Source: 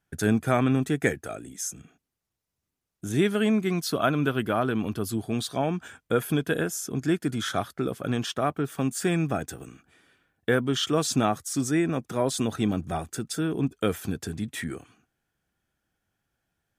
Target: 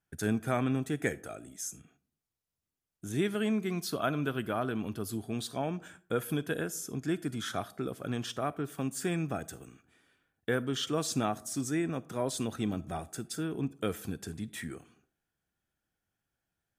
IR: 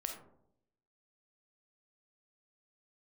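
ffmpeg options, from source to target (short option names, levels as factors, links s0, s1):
-filter_complex "[0:a]asplit=2[s0][s1];[1:a]atrim=start_sample=2205,afade=t=out:st=0.4:d=0.01,atrim=end_sample=18081,highshelf=f=5500:g=11[s2];[s1][s2]afir=irnorm=-1:irlink=0,volume=0.211[s3];[s0][s3]amix=inputs=2:normalize=0,volume=0.376"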